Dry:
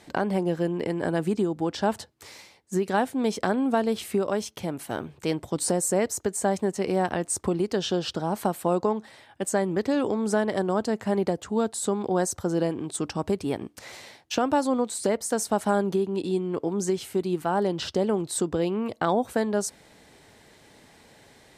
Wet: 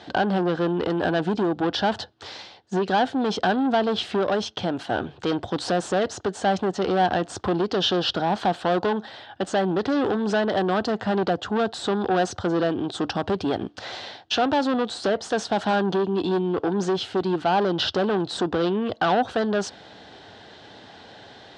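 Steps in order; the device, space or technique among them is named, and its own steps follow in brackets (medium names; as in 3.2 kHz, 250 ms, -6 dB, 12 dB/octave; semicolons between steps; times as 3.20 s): guitar amplifier (valve stage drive 27 dB, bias 0.25; tone controls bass +5 dB, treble +12 dB; cabinet simulation 110–3900 Hz, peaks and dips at 150 Hz -9 dB, 230 Hz -4 dB, 740 Hz +7 dB, 1.5 kHz +6 dB, 2.2 kHz -8 dB, 3.3 kHz +4 dB); trim +7.5 dB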